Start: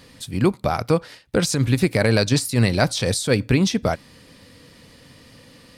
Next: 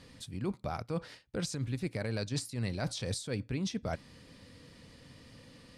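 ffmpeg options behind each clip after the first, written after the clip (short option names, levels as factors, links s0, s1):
-af "lowpass=9900,lowshelf=f=230:g=4.5,areverse,acompressor=threshold=0.0631:ratio=5,areverse,volume=0.376"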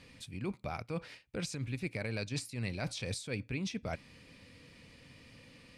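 -af "equalizer=f=2400:t=o:w=0.44:g=10,volume=0.708"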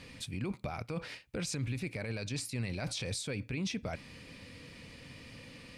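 -af "alimiter=level_in=3.16:limit=0.0631:level=0:latency=1:release=27,volume=0.316,volume=2"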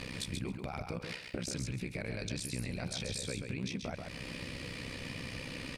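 -af "acompressor=threshold=0.00447:ratio=4,tremolo=f=64:d=0.919,aecho=1:1:135|270|405:0.531|0.0796|0.0119,volume=4.22"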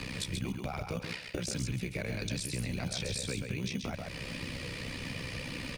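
-filter_complex "[0:a]flanger=delay=0.7:depth=1.6:regen=-62:speed=1.8:shape=triangular,acrossover=split=130|470|4100[s0][s1][s2][s3];[s1]acrusher=samples=14:mix=1:aa=0.000001[s4];[s0][s4][s2][s3]amix=inputs=4:normalize=0,volume=2.24"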